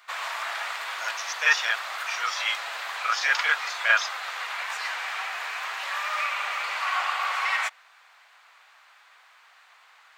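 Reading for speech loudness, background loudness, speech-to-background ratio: -25.5 LUFS, -30.0 LUFS, 4.5 dB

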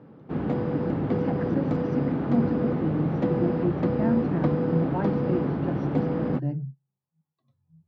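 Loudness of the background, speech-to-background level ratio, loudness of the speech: -27.0 LUFS, -4.0 dB, -31.0 LUFS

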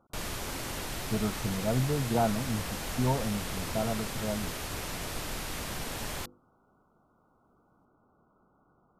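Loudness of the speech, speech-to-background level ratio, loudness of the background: -32.5 LUFS, 3.5 dB, -36.0 LUFS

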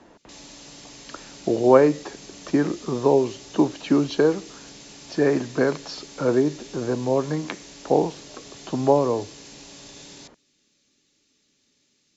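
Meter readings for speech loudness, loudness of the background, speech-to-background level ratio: -22.5 LUFS, -42.5 LUFS, 20.0 dB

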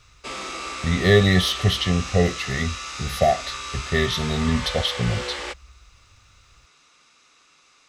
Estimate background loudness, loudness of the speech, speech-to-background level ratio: -31.0 LUFS, -22.0 LUFS, 9.0 dB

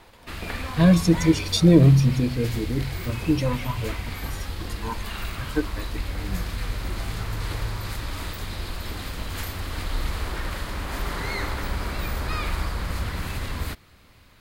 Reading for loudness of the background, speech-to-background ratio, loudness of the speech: -31.5 LUFS, 10.5 dB, -21.0 LUFS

